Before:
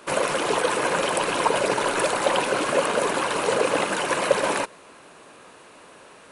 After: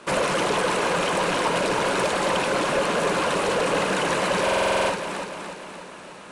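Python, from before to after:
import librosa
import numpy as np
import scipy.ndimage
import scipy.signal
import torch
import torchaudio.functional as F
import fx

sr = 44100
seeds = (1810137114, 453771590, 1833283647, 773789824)

p1 = fx.peak_eq(x, sr, hz=180.0, db=7.5, octaves=0.46)
p2 = fx.quant_dither(p1, sr, seeds[0], bits=6, dither='none')
p3 = p1 + (p2 * librosa.db_to_amplitude(-7.0))
p4 = 10.0 ** (-19.0 / 20.0) * np.tanh(p3 / 10.0 ** (-19.0 / 20.0))
p5 = scipy.signal.sosfilt(scipy.signal.butter(2, 8600.0, 'lowpass', fs=sr, output='sos'), p4)
p6 = p5 + fx.echo_feedback(p5, sr, ms=295, feedback_pct=56, wet_db=-6.5, dry=0)
p7 = fx.rider(p6, sr, range_db=4, speed_s=0.5)
y = fx.buffer_glitch(p7, sr, at_s=(4.43,), block=2048, repeats=9)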